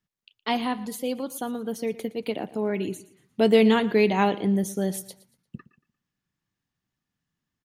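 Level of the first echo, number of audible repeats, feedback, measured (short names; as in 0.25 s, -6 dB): -18.0 dB, 2, 34%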